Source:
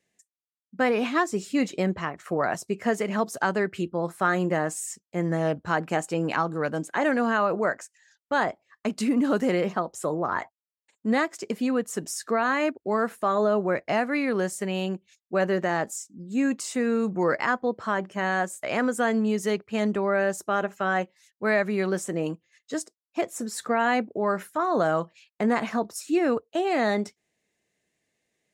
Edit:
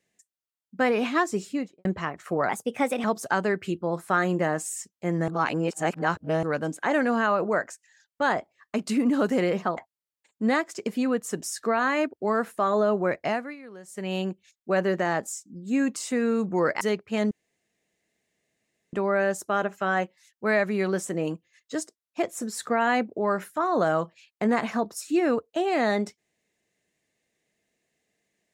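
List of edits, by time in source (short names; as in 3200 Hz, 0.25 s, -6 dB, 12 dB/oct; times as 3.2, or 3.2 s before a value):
1.36–1.85 studio fade out
2.49–3.15 speed 120%
5.39–6.54 reverse
9.88–10.41 cut
13.87–14.8 dip -18.5 dB, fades 0.33 s
17.45–19.42 cut
19.92 insert room tone 1.62 s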